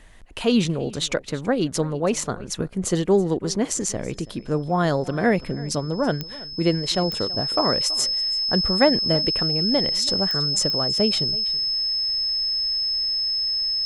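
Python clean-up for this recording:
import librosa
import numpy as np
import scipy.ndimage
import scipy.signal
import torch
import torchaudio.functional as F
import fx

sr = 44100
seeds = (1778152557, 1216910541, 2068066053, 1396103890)

y = fx.fix_declick_ar(x, sr, threshold=10.0)
y = fx.notch(y, sr, hz=5200.0, q=30.0)
y = fx.fix_echo_inverse(y, sr, delay_ms=329, level_db=-20.0)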